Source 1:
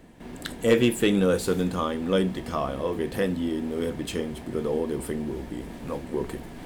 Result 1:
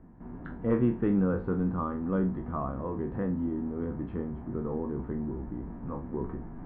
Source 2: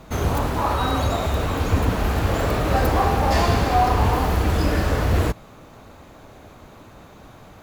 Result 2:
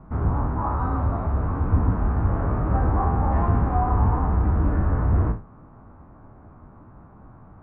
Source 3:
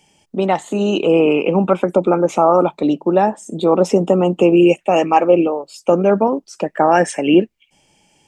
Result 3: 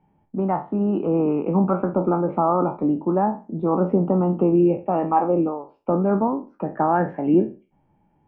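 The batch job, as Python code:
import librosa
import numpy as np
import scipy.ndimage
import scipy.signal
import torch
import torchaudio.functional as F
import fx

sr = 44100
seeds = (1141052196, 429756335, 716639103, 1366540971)

y = fx.spec_trails(x, sr, decay_s=0.31)
y = scipy.signal.sosfilt(scipy.signal.butter(4, 1200.0, 'lowpass', fs=sr, output='sos'), y)
y = fx.peak_eq(y, sr, hz=530.0, db=-11.0, octaves=1.4)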